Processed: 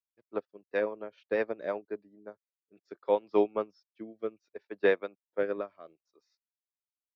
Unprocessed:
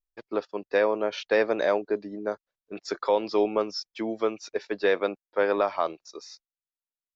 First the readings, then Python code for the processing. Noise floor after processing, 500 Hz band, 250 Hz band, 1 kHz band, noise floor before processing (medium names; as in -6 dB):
under -85 dBFS, -5.5 dB, -6.5 dB, -9.5 dB, under -85 dBFS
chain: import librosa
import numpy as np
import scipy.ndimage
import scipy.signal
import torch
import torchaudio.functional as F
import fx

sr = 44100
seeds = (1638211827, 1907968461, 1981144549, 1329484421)

y = fx.rotary_switch(x, sr, hz=7.5, then_hz=0.65, switch_at_s=0.89)
y = scipy.signal.sosfilt(scipy.signal.butter(2, 55.0, 'highpass', fs=sr, output='sos'), y)
y = fx.bass_treble(y, sr, bass_db=5, treble_db=-13)
y = fx.upward_expand(y, sr, threshold_db=-34.0, expansion=2.5)